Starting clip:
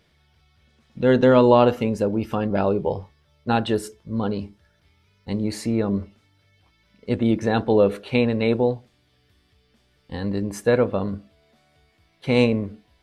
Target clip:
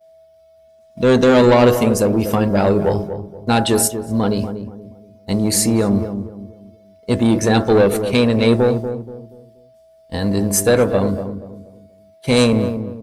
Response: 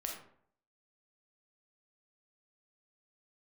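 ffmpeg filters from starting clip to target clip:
-filter_complex "[0:a]bandreject=f=136.1:t=h:w=4,bandreject=f=272.2:t=h:w=4,bandreject=f=408.3:t=h:w=4,bandreject=f=544.4:t=h:w=4,bandreject=f=680.5:t=h:w=4,bandreject=f=816.6:t=h:w=4,bandreject=f=952.7:t=h:w=4,bandreject=f=1.0888k:t=h:w=4,bandreject=f=1.2249k:t=h:w=4,bandreject=f=1.361k:t=h:w=4,bandreject=f=1.4971k:t=h:w=4,bandreject=f=1.6332k:t=h:w=4,bandreject=f=1.7693k:t=h:w=4,bandreject=f=1.9054k:t=h:w=4,bandreject=f=2.0415k:t=h:w=4,aeval=exprs='val(0)+0.0141*sin(2*PI*650*n/s)':c=same,acrossover=split=4400[a][b];[a]asoftclip=type=tanh:threshold=-16dB[c];[b]crystalizer=i=4:c=0[d];[c][d]amix=inputs=2:normalize=0,agate=range=-33dB:threshold=-30dB:ratio=3:detection=peak,asplit=2[e][f];[f]adelay=239,lowpass=f=820:p=1,volume=-8dB,asplit=2[g][h];[h]adelay=239,lowpass=f=820:p=1,volume=0.37,asplit=2[i][j];[j]adelay=239,lowpass=f=820:p=1,volume=0.37,asplit=2[k][l];[l]adelay=239,lowpass=f=820:p=1,volume=0.37[m];[g][i][k][m]amix=inputs=4:normalize=0[n];[e][n]amix=inputs=2:normalize=0,volume=8dB"

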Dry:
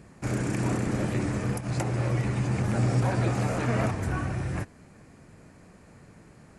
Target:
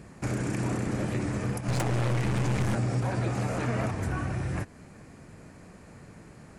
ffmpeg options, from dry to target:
-filter_complex "[0:a]acompressor=threshold=-33dB:ratio=2,asettb=1/sr,asplit=3[a][b][c];[a]atrim=end=1.684[d];[b]atrim=start=1.68:end=2.75,asetpts=PTS-STARTPTS,afade=t=in:d=0.004:c=qsin,afade=t=out:st=1.066:d=0.004:c=qsin,aeval=exprs='0.075*(cos(1*acos(clip(val(0)/0.075,-1,1)))-cos(1*PI/2))+0.0133*(cos(5*acos(clip(val(0)/0.075,-1,1)))-cos(5*PI/2))+0.0119*(cos(8*acos(clip(val(0)/0.075,-1,1)))-cos(8*PI/2))':c=same[e];[c]atrim=start=2.746[f];[d][e]acrossfade=d=0.004:c1=hsin:c2=qsin[g];[g][f]acrossfade=d=0.004:c1=qsin:c2=hsin,volume=3dB"

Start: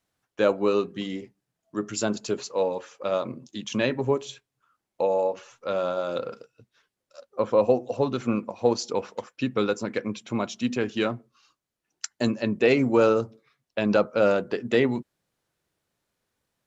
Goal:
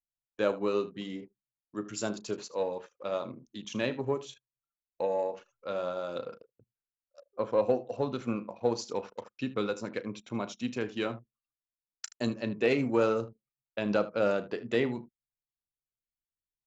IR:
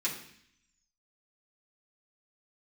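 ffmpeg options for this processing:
-af "aecho=1:1:35|77:0.178|0.168,aeval=exprs='0.473*(cos(1*acos(clip(val(0)/0.473,-1,1)))-cos(1*PI/2))+0.0075*(cos(7*acos(clip(val(0)/0.473,-1,1)))-cos(7*PI/2))':c=same,anlmdn=0.0251,volume=-6.5dB"

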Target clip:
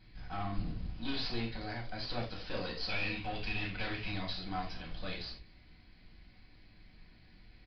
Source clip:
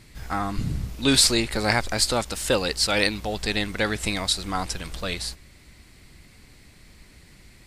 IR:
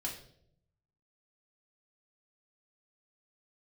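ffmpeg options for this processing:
-filter_complex "[0:a]asplit=3[a][b][c];[a]afade=t=out:st=1.44:d=0.02[d];[b]acompressor=threshold=-27dB:ratio=6,afade=t=in:st=1.44:d=0.02,afade=t=out:st=2.02:d=0.02[e];[c]afade=t=in:st=2.02:d=0.02[f];[d][e][f]amix=inputs=3:normalize=0,asettb=1/sr,asplit=3[g][h][i];[g]atrim=end=2.894[j];[h]atrim=start=2.89:end=4.08,asetpts=PTS-STARTPTS,afade=t=in:d=0.004:c=qsin,afade=t=out:st=1.186:d=0.004:c=qsin,equalizer=f=2.6k:w=2.1:g=12.5[k];[i]atrim=start=4.076[l];[j][k]acrossfade=d=0.004:c1=hsin:c2=qsin[m];[m][l]acrossfade=d=0.004:c1=qsin:c2=hsin,aeval=exprs='(tanh(20*val(0)+0.5)-tanh(0.5))/20':c=same[n];[1:a]atrim=start_sample=2205,afade=t=out:st=0.15:d=0.01,atrim=end_sample=7056[o];[n][o]afir=irnorm=-1:irlink=0,aresample=11025,aresample=44100,asplit=2[p][q];[q]adelay=220,highpass=300,lowpass=3.4k,asoftclip=type=hard:threshold=-20.5dB,volume=-22dB[r];[p][r]amix=inputs=2:normalize=0,volume=-8.5dB"

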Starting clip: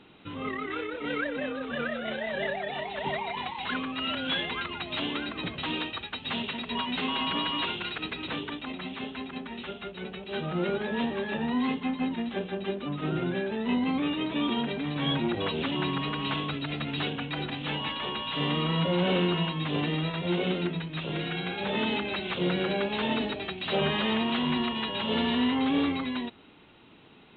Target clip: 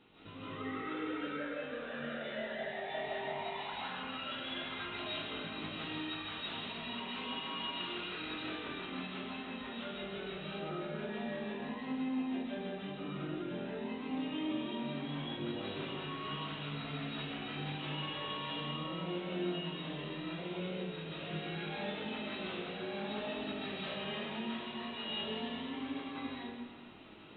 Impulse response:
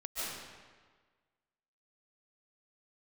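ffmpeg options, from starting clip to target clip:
-filter_complex "[0:a]acompressor=threshold=-39dB:ratio=5,flanger=delay=18.5:depth=4.2:speed=0.18[a];[1:a]atrim=start_sample=2205[b];[a][b]afir=irnorm=-1:irlink=0"

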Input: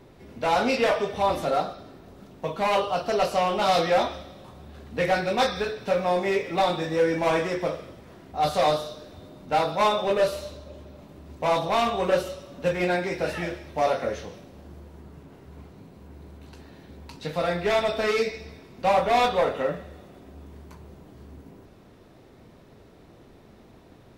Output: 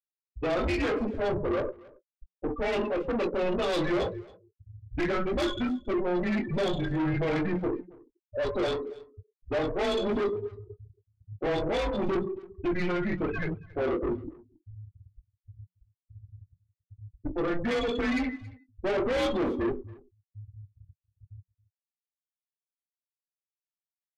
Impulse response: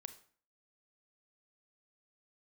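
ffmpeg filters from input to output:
-filter_complex "[0:a]afftfilt=real='re*gte(hypot(re,im),0.0631)':imag='im*gte(hypot(re,im),0.0631)':win_size=1024:overlap=0.75,equalizer=f=1.1k:w=4.9:g=-12,asplit=2[a][b];[b]alimiter=limit=-24dB:level=0:latency=1:release=18,volume=-3dB[c];[a][c]amix=inputs=2:normalize=0,afreqshift=-180,asoftclip=type=tanh:threshold=-25dB,asplit=2[d][e];[e]adelay=20,volume=-12dB[f];[d][f]amix=inputs=2:normalize=0,asplit=2[g][h];[h]aecho=0:1:276:0.0708[i];[g][i]amix=inputs=2:normalize=0"

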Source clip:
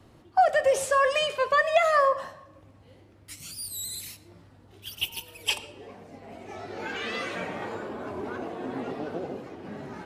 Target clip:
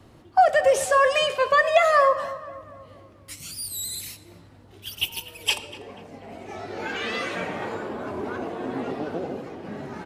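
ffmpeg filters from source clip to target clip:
-filter_complex "[0:a]asplit=2[a][b];[b]adelay=242,lowpass=f=2.2k:p=1,volume=-15dB,asplit=2[c][d];[d]adelay=242,lowpass=f=2.2k:p=1,volume=0.51,asplit=2[e][f];[f]adelay=242,lowpass=f=2.2k:p=1,volume=0.51,asplit=2[g][h];[h]adelay=242,lowpass=f=2.2k:p=1,volume=0.51,asplit=2[i][j];[j]adelay=242,lowpass=f=2.2k:p=1,volume=0.51[k];[a][c][e][g][i][k]amix=inputs=6:normalize=0,volume=3.5dB"

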